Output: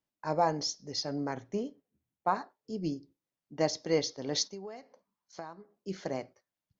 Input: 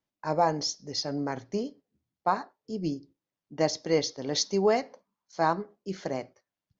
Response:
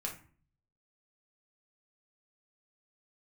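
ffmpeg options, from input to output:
-filter_complex "[0:a]asettb=1/sr,asplit=3[link_01][link_02][link_03];[link_01]atrim=end=1.344[link_04];[link_02]atrim=start=1.34:end=2.35,asetpts=PTS-STARTPTS,afade=type=in:duration=0.004:curve=qsin,afade=type=out:start_time=1.006:duration=0.004:curve=qsin,equalizer=frequency=4700:width_type=o:width=0.36:gain=-12.5[link_05];[link_03]atrim=start=2.346[link_06];[link_04][link_05]acrossfade=duration=0.004:curve1=hsin:curve2=qsin[link_07];[link_07][link_06]acrossfade=duration=0.004:curve1=qsin:curve2=hsin,asplit=3[link_08][link_09][link_10];[link_08]afade=type=out:start_time=4.47:duration=0.02[link_11];[link_09]acompressor=threshold=-37dB:ratio=12,afade=type=in:start_time=4.47:duration=0.02,afade=type=out:start_time=5.75:duration=0.02[link_12];[link_10]afade=type=in:start_time=5.75:duration=0.02[link_13];[link_11][link_12][link_13]amix=inputs=3:normalize=0,volume=-3dB"

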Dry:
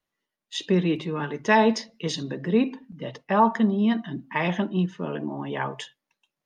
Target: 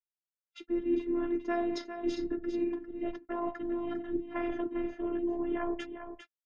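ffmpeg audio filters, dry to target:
ffmpeg -i in.wav -filter_complex "[0:a]highpass=frequency=140:poles=1,aemphasis=mode=reproduction:type=riaa,agate=range=-42dB:threshold=-37dB:ratio=16:detection=peak,equalizer=frequency=200:width_type=o:width=0.33:gain=-8,equalizer=frequency=315:width_type=o:width=0.33:gain=8,equalizer=frequency=4000:width_type=o:width=0.33:gain=-6,areverse,acompressor=threshold=-28dB:ratio=5,areverse,asplit=2[link_01][link_02];[link_02]asetrate=33038,aresample=44100,atempo=1.33484,volume=-4dB[link_03];[link_01][link_03]amix=inputs=2:normalize=0,afftfilt=real='hypot(re,im)*cos(PI*b)':imag='0':win_size=512:overlap=0.75,asplit=2[link_04][link_05];[link_05]aecho=0:1:401:0.355[link_06];[link_04][link_06]amix=inputs=2:normalize=0" out.wav

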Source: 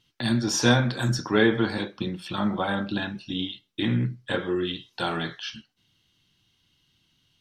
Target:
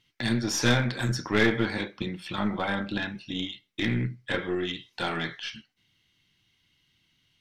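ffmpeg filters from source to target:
ffmpeg -i in.wav -af "equalizer=frequency=2100:width_type=o:width=0.44:gain=10,aeval=exprs='clip(val(0),-1,0.119)':channel_layout=same,aeval=exprs='0.668*(cos(1*acos(clip(val(0)/0.668,-1,1)))-cos(1*PI/2))+0.0299*(cos(8*acos(clip(val(0)/0.668,-1,1)))-cos(8*PI/2))':channel_layout=same,volume=-3dB" out.wav

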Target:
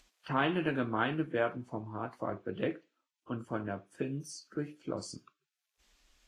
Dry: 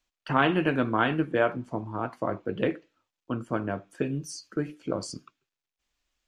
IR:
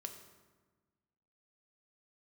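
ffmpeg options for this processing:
-filter_complex "[0:a]acompressor=mode=upward:threshold=-46dB:ratio=2.5,asplit=2[link_01][link_02];[1:a]atrim=start_sample=2205,atrim=end_sample=4410[link_03];[link_02][link_03]afir=irnorm=-1:irlink=0,volume=-14dB[link_04];[link_01][link_04]amix=inputs=2:normalize=0,volume=-7.5dB" -ar 48000 -c:a libvorbis -b:a 32k

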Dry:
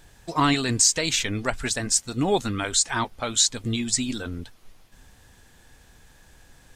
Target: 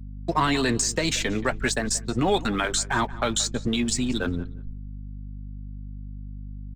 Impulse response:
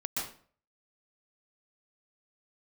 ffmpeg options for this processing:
-filter_complex "[0:a]agate=range=-33dB:threshold=-43dB:ratio=3:detection=peak,anlmdn=15.8,adynamicequalizer=threshold=0.00631:dfrequency=1700:dqfactor=4.4:tfrequency=1700:tqfactor=4.4:attack=5:release=100:ratio=0.375:range=2:mode=boostabove:tftype=bell,acrossover=split=91|290|1100[link_01][link_02][link_03][link_04];[link_01]acompressor=threshold=-40dB:ratio=4[link_05];[link_02]acompressor=threshold=-38dB:ratio=4[link_06];[link_03]acompressor=threshold=-29dB:ratio=4[link_07];[link_04]acompressor=threshold=-32dB:ratio=4[link_08];[link_05][link_06][link_07][link_08]amix=inputs=4:normalize=0,asplit=2[link_09][link_10];[link_10]alimiter=limit=-23.5dB:level=0:latency=1:release=125,volume=1dB[link_11];[link_09][link_11]amix=inputs=2:normalize=0,acontrast=52,aeval=exprs='sgn(val(0))*max(abs(val(0))-0.00596,0)':channel_layout=same,flanger=delay=4.4:depth=1.3:regen=-57:speed=1.6:shape=triangular,aeval=exprs='val(0)+0.0158*(sin(2*PI*50*n/s)+sin(2*PI*2*50*n/s)/2+sin(2*PI*3*50*n/s)/3+sin(2*PI*4*50*n/s)/4+sin(2*PI*5*50*n/s)/5)':channel_layout=same,asplit=2[link_12][link_13];[link_13]adelay=179,lowpass=frequency=3800:poles=1,volume=-18dB,asplit=2[link_14][link_15];[link_15]adelay=179,lowpass=frequency=3800:poles=1,volume=0.18[link_16];[link_14][link_16]amix=inputs=2:normalize=0[link_17];[link_12][link_17]amix=inputs=2:normalize=0"

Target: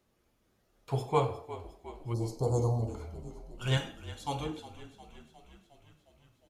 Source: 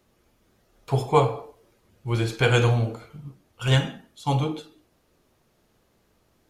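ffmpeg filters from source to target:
ffmpeg -i in.wav -filter_complex "[0:a]asplit=3[link_01][link_02][link_03];[link_01]afade=type=out:start_time=2.12:duration=0.02[link_04];[link_02]asuperstop=centerf=2200:order=12:qfactor=0.64,afade=type=in:start_time=2.12:duration=0.02,afade=type=out:start_time=2.87:duration=0.02[link_05];[link_03]afade=type=in:start_time=2.87:duration=0.02[link_06];[link_04][link_05][link_06]amix=inputs=3:normalize=0,asettb=1/sr,asplit=3[link_07][link_08][link_09];[link_07]atrim=end=3.774[link_10];[link_08]atrim=start=3.77:end=4.46,asetpts=PTS-STARTPTS,afade=type=in:duration=0.004:curve=qsin,afade=type=out:start_time=0.686:duration=0.004:curve=qsin,bass=frequency=250:gain=-9,treble=frequency=4000:gain=5[link_11];[link_09]atrim=start=4.456[link_12];[link_10][link_11]acrossfade=duration=0.004:curve1=hsin:curve2=qsin[link_13];[link_13][link_12]acrossfade=duration=0.004:curve1=qsin:curve2=hsin,asplit=8[link_14][link_15][link_16][link_17][link_18][link_19][link_20][link_21];[link_15]adelay=358,afreqshift=-39,volume=-15dB[link_22];[link_16]adelay=716,afreqshift=-78,volume=-18.7dB[link_23];[link_17]adelay=1074,afreqshift=-117,volume=-22.5dB[link_24];[link_18]adelay=1432,afreqshift=-156,volume=-26.2dB[link_25];[link_19]adelay=1790,afreqshift=-195,volume=-30dB[link_26];[link_20]adelay=2148,afreqshift=-234,volume=-33.7dB[link_27];[link_21]adelay=2506,afreqshift=-273,volume=-37.5dB[link_28];[link_14][link_22][link_23][link_24][link_25][link_26][link_27][link_28]amix=inputs=8:normalize=0,volume=-8.5dB" out.wav

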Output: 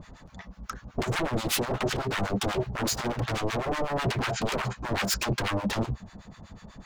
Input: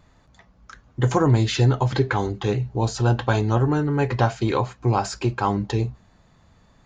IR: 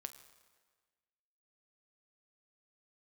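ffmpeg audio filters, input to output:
-filter_complex "[0:a]equalizer=frequency=200:width_type=o:width=0.24:gain=7,asplit=2[link_01][link_02];[link_02]acompressor=threshold=-25dB:ratio=6,volume=-1.5dB[link_03];[link_01][link_03]amix=inputs=2:normalize=0,alimiter=limit=-16dB:level=0:latency=1:release=12,aeval=exprs='0.0473*(abs(mod(val(0)/0.0473+3,4)-2)-1)':channel_layout=same,acrossover=split=910[link_04][link_05];[link_04]aeval=exprs='val(0)*(1-1/2+1/2*cos(2*PI*8.1*n/s))':channel_layout=same[link_06];[link_05]aeval=exprs='val(0)*(1-1/2-1/2*cos(2*PI*8.1*n/s))':channel_layout=same[link_07];[link_06][link_07]amix=inputs=2:normalize=0,volume=7.5dB"

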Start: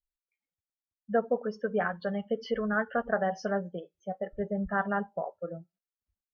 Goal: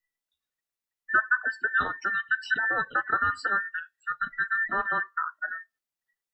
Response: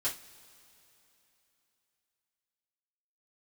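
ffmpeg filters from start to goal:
-filter_complex "[0:a]afftfilt=real='real(if(between(b,1,1012),(2*floor((b-1)/92)+1)*92-b,b),0)':imag='imag(if(between(b,1,1012),(2*floor((b-1)/92)+1)*92-b,b),0)*if(between(b,1,1012),-1,1)':win_size=2048:overlap=0.75,acrossover=split=140|900|2100[link_01][link_02][link_03][link_04];[link_02]acompressor=threshold=-43dB:ratio=6[link_05];[link_01][link_05][link_03][link_04]amix=inputs=4:normalize=0,volume=4dB"

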